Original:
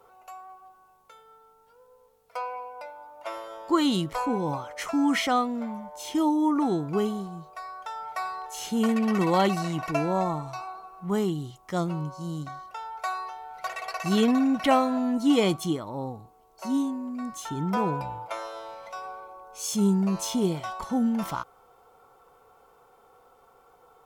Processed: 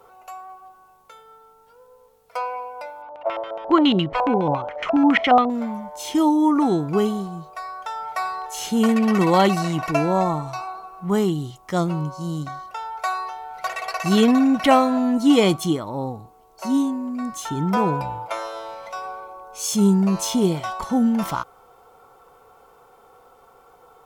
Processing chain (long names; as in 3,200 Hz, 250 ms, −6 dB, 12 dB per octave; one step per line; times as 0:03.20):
0:03.02–0:05.50: auto-filter low-pass square 7.2 Hz 700–2,800 Hz
level +6 dB